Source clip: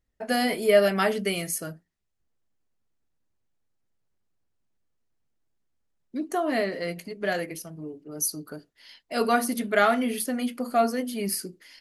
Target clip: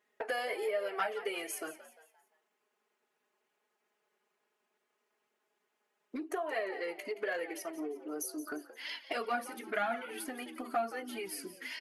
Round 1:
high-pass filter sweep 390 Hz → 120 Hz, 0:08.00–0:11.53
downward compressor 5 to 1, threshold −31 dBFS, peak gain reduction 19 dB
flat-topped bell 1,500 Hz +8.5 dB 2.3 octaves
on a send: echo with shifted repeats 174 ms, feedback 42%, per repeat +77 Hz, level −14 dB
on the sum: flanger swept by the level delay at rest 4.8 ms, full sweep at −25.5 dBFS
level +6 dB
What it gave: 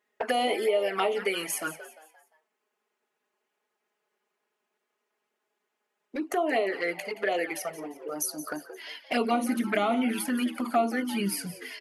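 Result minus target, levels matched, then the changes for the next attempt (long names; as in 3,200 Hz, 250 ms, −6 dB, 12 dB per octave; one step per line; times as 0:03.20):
downward compressor: peak gain reduction −9 dB
change: downward compressor 5 to 1, threshold −42.5 dBFS, peak gain reduction 28.5 dB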